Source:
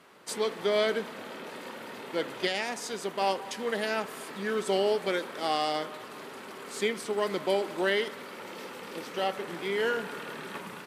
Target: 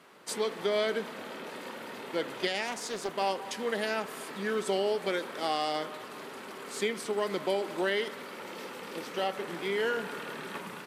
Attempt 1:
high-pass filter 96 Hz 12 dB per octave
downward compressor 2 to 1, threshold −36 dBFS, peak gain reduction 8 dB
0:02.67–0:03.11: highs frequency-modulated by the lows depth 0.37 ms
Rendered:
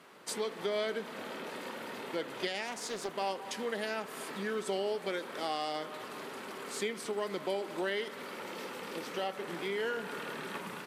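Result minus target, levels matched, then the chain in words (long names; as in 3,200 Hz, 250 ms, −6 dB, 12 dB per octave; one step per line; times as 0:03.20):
downward compressor: peak gain reduction +5 dB
high-pass filter 96 Hz 12 dB per octave
downward compressor 2 to 1, threshold −26.5 dBFS, peak gain reduction 3.5 dB
0:02.67–0:03.11: highs frequency-modulated by the lows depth 0.37 ms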